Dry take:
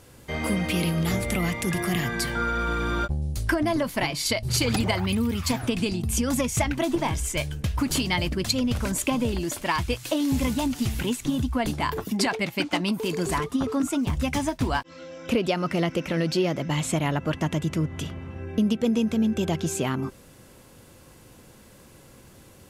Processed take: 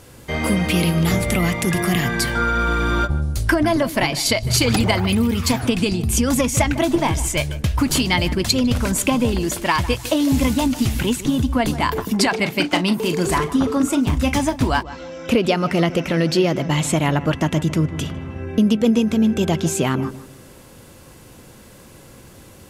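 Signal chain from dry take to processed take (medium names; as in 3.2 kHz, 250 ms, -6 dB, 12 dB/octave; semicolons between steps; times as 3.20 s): 12.31–14.37 s: doubling 38 ms -12 dB; filtered feedback delay 153 ms, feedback 34%, low-pass 1.7 kHz, level -14.5 dB; trim +6.5 dB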